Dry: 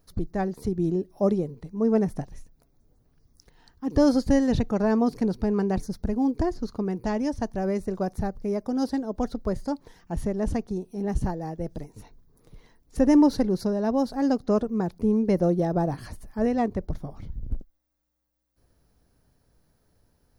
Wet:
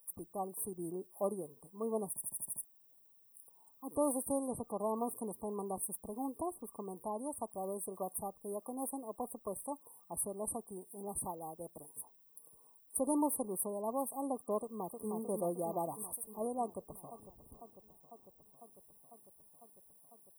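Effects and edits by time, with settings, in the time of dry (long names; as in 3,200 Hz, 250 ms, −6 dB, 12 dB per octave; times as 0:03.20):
0:02.08: stutter in place 0.08 s, 7 plays
0:14.61–0:15.09: delay throw 310 ms, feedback 70%, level −4.5 dB
0:16.61–0:17.51: delay throw 500 ms, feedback 80%, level −13.5 dB
whole clip: first difference; brick-wall band-stop 1,200–8,100 Hz; level +11 dB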